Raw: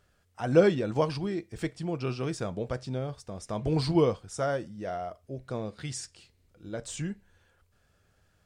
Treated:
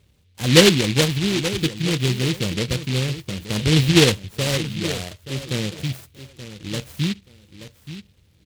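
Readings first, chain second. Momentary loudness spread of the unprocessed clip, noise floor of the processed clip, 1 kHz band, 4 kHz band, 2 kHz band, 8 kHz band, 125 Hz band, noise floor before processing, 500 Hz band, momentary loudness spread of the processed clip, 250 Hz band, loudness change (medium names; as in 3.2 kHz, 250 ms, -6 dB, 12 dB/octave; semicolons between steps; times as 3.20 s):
15 LU, -58 dBFS, +3.0 dB, +22.0 dB, +15.5 dB, +16.0 dB, +12.0 dB, -69 dBFS, +5.0 dB, 20 LU, +10.0 dB, +10.0 dB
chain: high-pass 55 Hz; tilt EQ -3 dB/octave; comb of notches 680 Hz; on a send: feedback delay 878 ms, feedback 18%, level -13 dB; on the sum: delay time shaken by noise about 3 kHz, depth 0.27 ms; trim +4.5 dB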